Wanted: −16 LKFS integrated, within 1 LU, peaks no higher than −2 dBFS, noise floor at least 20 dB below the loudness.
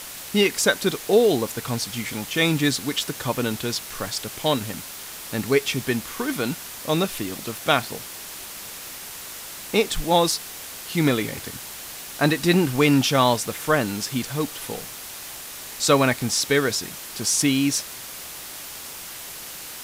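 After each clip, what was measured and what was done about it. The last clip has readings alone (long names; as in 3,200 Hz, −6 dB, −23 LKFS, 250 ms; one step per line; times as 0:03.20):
background noise floor −37 dBFS; target noise floor −43 dBFS; integrated loudness −23.0 LKFS; sample peak −4.5 dBFS; target loudness −16.0 LKFS
→ broadband denoise 6 dB, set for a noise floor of −37 dBFS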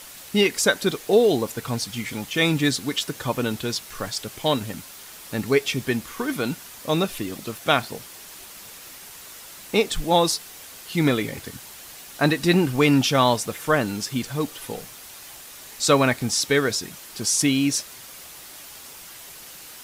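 background noise floor −42 dBFS; target noise floor −43 dBFS
→ broadband denoise 6 dB, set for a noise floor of −42 dBFS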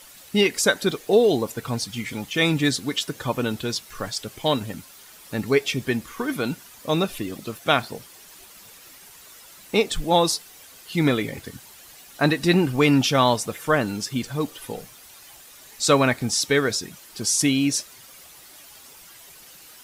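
background noise floor −47 dBFS; integrated loudness −23.0 LKFS; sample peak −4.5 dBFS; target loudness −16.0 LKFS
→ level +7 dB
brickwall limiter −2 dBFS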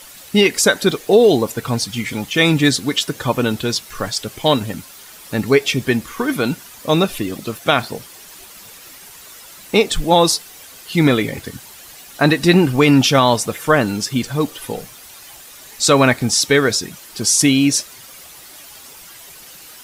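integrated loudness −16.5 LKFS; sample peak −2.0 dBFS; background noise floor −40 dBFS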